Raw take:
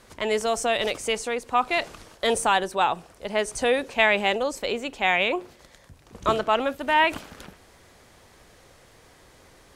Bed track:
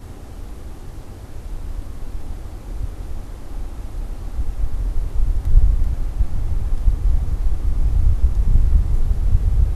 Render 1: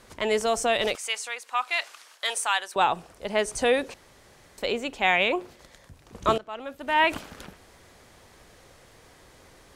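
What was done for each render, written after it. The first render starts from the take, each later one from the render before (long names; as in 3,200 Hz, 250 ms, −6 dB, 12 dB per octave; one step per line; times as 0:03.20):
0:00.95–0:02.76: high-pass filter 1,200 Hz
0:03.94–0:04.58: fill with room tone
0:06.38–0:07.07: fade in quadratic, from −17.5 dB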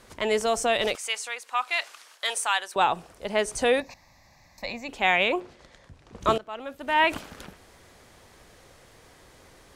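0:03.80–0:04.89: phaser with its sweep stopped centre 2,100 Hz, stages 8
0:05.40–0:06.21: high-frequency loss of the air 65 metres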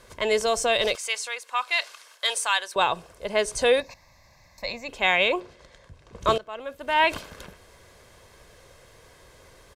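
comb filter 1.9 ms, depth 40%
dynamic equaliser 4,400 Hz, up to +5 dB, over −41 dBFS, Q 1.5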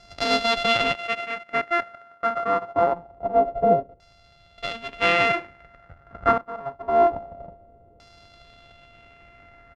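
samples sorted by size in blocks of 64 samples
auto-filter low-pass saw down 0.25 Hz 480–5,100 Hz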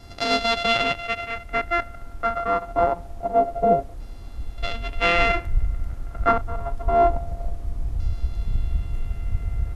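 mix in bed track −9 dB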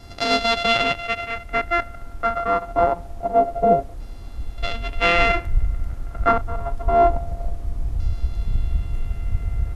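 level +2 dB
brickwall limiter −2 dBFS, peak gain reduction 1 dB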